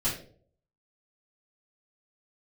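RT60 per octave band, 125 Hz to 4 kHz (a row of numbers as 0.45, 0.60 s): 0.75, 0.60, 0.65, 0.40, 0.35, 0.35 s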